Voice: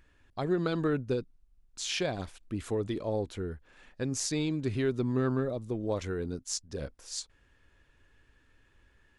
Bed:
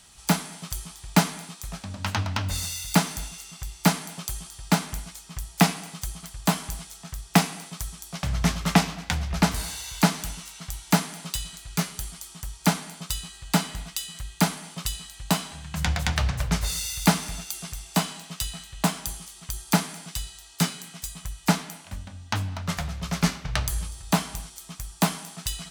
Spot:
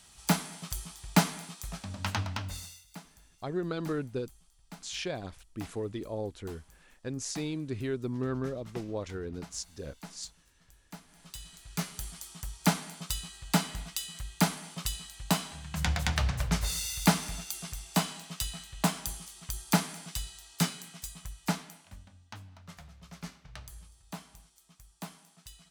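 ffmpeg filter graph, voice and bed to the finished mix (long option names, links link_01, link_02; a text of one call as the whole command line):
ffmpeg -i stem1.wav -i stem2.wav -filter_complex "[0:a]adelay=3050,volume=-4dB[link_01];[1:a]volume=18.5dB,afade=type=out:start_time=2.06:duration=0.79:silence=0.0749894,afade=type=in:start_time=11.06:duration=1.15:silence=0.0749894,afade=type=out:start_time=20.52:duration=1.87:silence=0.158489[link_02];[link_01][link_02]amix=inputs=2:normalize=0" out.wav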